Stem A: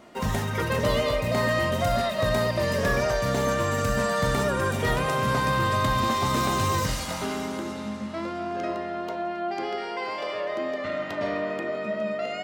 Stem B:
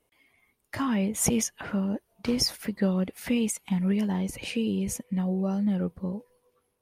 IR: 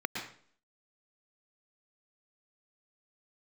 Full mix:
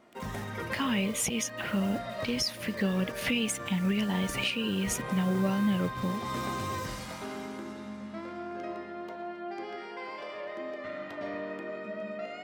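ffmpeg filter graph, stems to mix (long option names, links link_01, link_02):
-filter_complex "[0:a]volume=-13.5dB,asplit=2[link_01][link_02];[link_02]volume=-6.5dB[link_03];[1:a]equalizer=frequency=2900:width=1:gain=12.5,acrusher=bits=7:mix=0:aa=0.000001,volume=-0.5dB,asplit=2[link_04][link_05];[link_05]apad=whole_len=548408[link_06];[link_01][link_06]sidechaincompress=threshold=-40dB:ratio=8:attack=16:release=209[link_07];[2:a]atrim=start_sample=2205[link_08];[link_03][link_08]afir=irnorm=-1:irlink=0[link_09];[link_07][link_04][link_09]amix=inputs=3:normalize=0,alimiter=limit=-19dB:level=0:latency=1:release=427"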